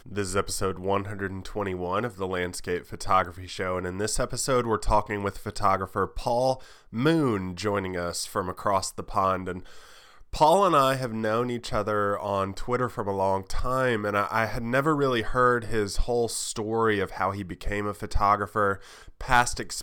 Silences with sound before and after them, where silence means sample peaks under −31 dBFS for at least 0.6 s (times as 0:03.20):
0:09.58–0:10.33